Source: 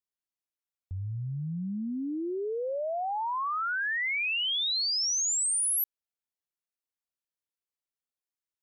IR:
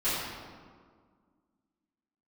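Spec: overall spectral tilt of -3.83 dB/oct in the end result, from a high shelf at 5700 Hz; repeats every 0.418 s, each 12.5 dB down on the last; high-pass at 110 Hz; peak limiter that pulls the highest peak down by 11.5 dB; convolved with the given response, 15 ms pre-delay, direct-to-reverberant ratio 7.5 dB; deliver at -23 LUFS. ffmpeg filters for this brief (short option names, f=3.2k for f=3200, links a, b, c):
-filter_complex "[0:a]highpass=110,highshelf=f=5.7k:g=-8,alimiter=level_in=15dB:limit=-24dB:level=0:latency=1,volume=-15dB,aecho=1:1:418|836|1254:0.237|0.0569|0.0137,asplit=2[a][b];[1:a]atrim=start_sample=2205,adelay=15[c];[b][c]afir=irnorm=-1:irlink=0,volume=-18dB[d];[a][d]amix=inputs=2:normalize=0,volume=17dB"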